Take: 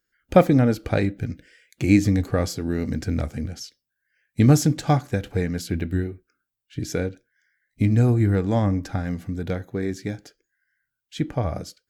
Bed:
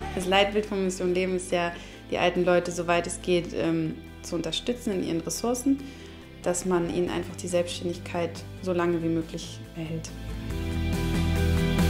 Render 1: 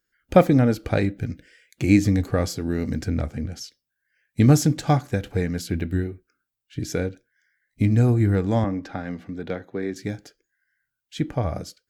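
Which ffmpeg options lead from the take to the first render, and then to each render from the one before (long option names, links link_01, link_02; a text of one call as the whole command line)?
ffmpeg -i in.wav -filter_complex "[0:a]asettb=1/sr,asplit=3[link_01][link_02][link_03];[link_01]atrim=end=3.094[link_04];[link_02]atrim=start=3.09:end=3.52,asetpts=PTS-STARTPTS,afade=type=in:duration=0.004:curve=qsin,afade=type=out:start_time=0.426:duration=0.004:curve=qsin,highshelf=frequency=4900:gain=-8.5[link_05];[link_03]atrim=start=3.516[link_06];[link_04][link_05]acrossfade=duration=0.004:curve1=hsin:curve2=qsin[link_07];[link_07][link_06]acrossfade=duration=0.004:curve1=qsin:curve2=hsin,asettb=1/sr,asplit=3[link_08][link_09][link_10];[link_08]atrim=end=8.644[link_11];[link_09]atrim=start=8.64:end=9.96,asetpts=PTS-STARTPTS,afade=type=in:duration=0.004:curve=qsin,afade=type=out:start_time=1.316:duration=0.004:curve=qsin,acrossover=split=190 4800:gain=0.224 1 0.158[link_12][link_13][link_14];[link_12][link_13][link_14]amix=inputs=3:normalize=0[link_15];[link_10]atrim=start=9.956[link_16];[link_11][link_15]acrossfade=duration=0.004:curve1=hsin:curve2=qsin[link_17];[link_17][link_16]acrossfade=duration=0.004:curve1=qsin:curve2=hsin" out.wav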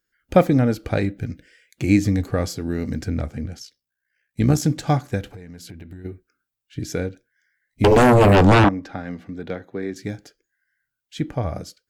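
ffmpeg -i in.wav -filter_complex "[0:a]asplit=3[link_01][link_02][link_03];[link_01]afade=type=out:start_time=3.56:duration=0.02[link_04];[link_02]tremolo=f=62:d=0.571,afade=type=in:start_time=3.56:duration=0.02,afade=type=out:start_time=4.62:duration=0.02[link_05];[link_03]afade=type=in:start_time=4.62:duration=0.02[link_06];[link_04][link_05][link_06]amix=inputs=3:normalize=0,asplit=3[link_07][link_08][link_09];[link_07]afade=type=out:start_time=5.26:duration=0.02[link_10];[link_08]acompressor=threshold=-35dB:ratio=10:attack=3.2:release=140:knee=1:detection=peak,afade=type=in:start_time=5.26:duration=0.02,afade=type=out:start_time=6.04:duration=0.02[link_11];[link_09]afade=type=in:start_time=6.04:duration=0.02[link_12];[link_10][link_11][link_12]amix=inputs=3:normalize=0,asettb=1/sr,asplit=3[link_13][link_14][link_15];[link_13]atrim=end=7.844[link_16];[link_14]atrim=start=7.84:end=8.69,asetpts=PTS-STARTPTS,afade=type=in:duration=0.004:curve=qsin,afade=type=out:start_time=0.846:duration=0.004:curve=qsin,aeval=exprs='0.355*sin(PI/2*4.47*val(0)/0.355)':channel_layout=same[link_17];[link_15]atrim=start=8.686[link_18];[link_16][link_17]acrossfade=duration=0.004:curve1=hsin:curve2=qsin[link_19];[link_19][link_18]acrossfade=duration=0.004:curve1=qsin:curve2=hsin" out.wav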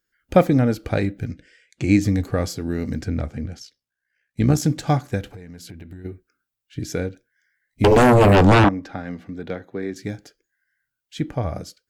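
ffmpeg -i in.wav -filter_complex "[0:a]asettb=1/sr,asplit=3[link_01][link_02][link_03];[link_01]atrim=end=1.314[link_04];[link_02]atrim=start=1.31:end=2.01,asetpts=PTS-STARTPTS,afade=type=in:duration=0.004:curve=qsin,afade=type=out:start_time=0.696:duration=0.004:curve=qsin,lowpass=frequency=8800:width=0.5412,lowpass=frequency=8800:width=1.3066[link_05];[link_03]atrim=start=2.006[link_06];[link_04][link_05]acrossfade=duration=0.004:curve1=hsin:curve2=qsin[link_07];[link_07][link_06]acrossfade=duration=0.004:curve1=qsin:curve2=hsin,asettb=1/sr,asplit=3[link_08][link_09][link_10];[link_08]atrim=end=3.014[link_11];[link_09]atrim=start=3.01:end=4.57,asetpts=PTS-STARTPTS,afade=type=in:duration=0.004:curve=qsin,afade=type=out:start_time=1.556:duration=0.004:curve=qsin,highshelf=frequency=11000:gain=-10[link_12];[link_10]atrim=start=4.566[link_13];[link_11][link_12]acrossfade=duration=0.004:curve1=hsin:curve2=qsin[link_14];[link_14][link_13]acrossfade=duration=0.004:curve1=qsin:curve2=hsin" out.wav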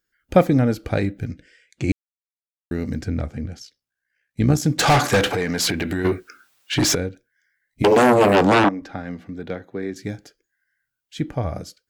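ffmpeg -i in.wav -filter_complex "[0:a]asettb=1/sr,asplit=3[link_01][link_02][link_03];[link_01]atrim=end=4.794[link_04];[link_02]atrim=start=4.79:end=6.95,asetpts=PTS-STARTPTS,afade=type=in:duration=0.004:curve=qsin,afade=type=out:start_time=2.156:duration=0.004:curve=qsin,asplit=2[link_05][link_06];[link_06]highpass=frequency=720:poles=1,volume=33dB,asoftclip=type=tanh:threshold=-8dB[link_07];[link_05][link_07]amix=inputs=2:normalize=0,lowpass=frequency=6000:poles=1,volume=-6dB[link_08];[link_03]atrim=start=6.946[link_09];[link_04][link_08]acrossfade=duration=0.004:curve1=hsin:curve2=qsin[link_10];[link_10][link_09]acrossfade=duration=0.004:curve1=qsin:curve2=hsin,asettb=1/sr,asplit=3[link_11][link_12][link_13];[link_11]atrim=end=7.824[link_14];[link_12]atrim=start=7.82:end=8.82,asetpts=PTS-STARTPTS,afade=type=in:duration=0.004:curve=qsin,afade=type=out:start_time=0.996:duration=0.004:curve=qsin,highpass=210[link_15];[link_13]atrim=start=8.816[link_16];[link_14][link_15]acrossfade=duration=0.004:curve1=hsin:curve2=qsin[link_17];[link_17][link_16]acrossfade=duration=0.004:curve1=qsin:curve2=hsin,asplit=3[link_18][link_19][link_20];[link_18]atrim=end=1.92,asetpts=PTS-STARTPTS,afade=type=out:start_time=1.916:duration=0.004:curve=hsin[link_21];[link_19]atrim=start=1.92:end=2.71,asetpts=PTS-STARTPTS,volume=0[link_22];[link_20]atrim=start=2.71,asetpts=PTS-STARTPTS,afade=type=in:duration=0.004:curve=hsin[link_23];[link_21][link_22][link_23]concat=n=3:v=0:a=1" out.wav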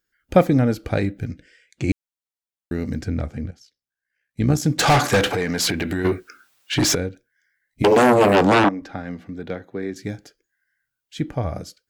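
ffmpeg -i in.wav -filter_complex "[0:a]asplit=2[link_01][link_02];[link_01]atrim=end=3.51,asetpts=PTS-STARTPTS,afade=type=out:start_time=3.506:duration=0.004:curve=hsin:silence=0.237137[link_03];[link_02]atrim=start=3.51,asetpts=PTS-STARTPTS,afade=type=in:duration=1.19:silence=0.237137[link_04];[link_03][link_04]concat=n=2:v=0:a=1" out.wav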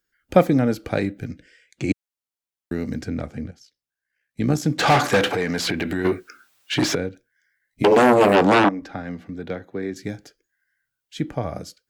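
ffmpeg -i in.wav -filter_complex "[0:a]acrossover=split=130|4400[link_01][link_02][link_03];[link_01]acompressor=threshold=-39dB:ratio=6[link_04];[link_03]alimiter=level_in=1.5dB:limit=-24dB:level=0:latency=1:release=273,volume=-1.5dB[link_05];[link_04][link_02][link_05]amix=inputs=3:normalize=0" out.wav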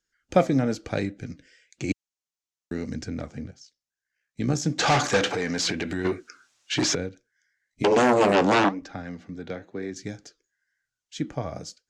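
ffmpeg -i in.wav -af "lowpass=frequency=6600:width_type=q:width=2.4,flanger=delay=0.3:depth=7.6:regen=81:speed=1:shape=sinusoidal" out.wav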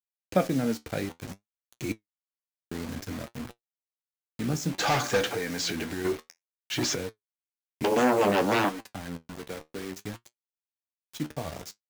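ffmpeg -i in.wav -af "acrusher=bits=5:mix=0:aa=0.000001,flanger=delay=8.2:depth=5.2:regen=58:speed=0.58:shape=sinusoidal" out.wav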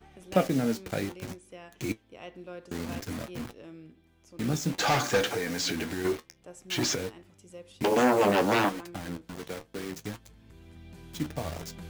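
ffmpeg -i in.wav -i bed.wav -filter_complex "[1:a]volume=-21dB[link_01];[0:a][link_01]amix=inputs=2:normalize=0" out.wav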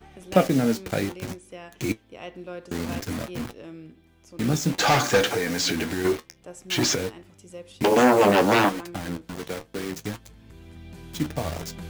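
ffmpeg -i in.wav -af "volume=5.5dB" out.wav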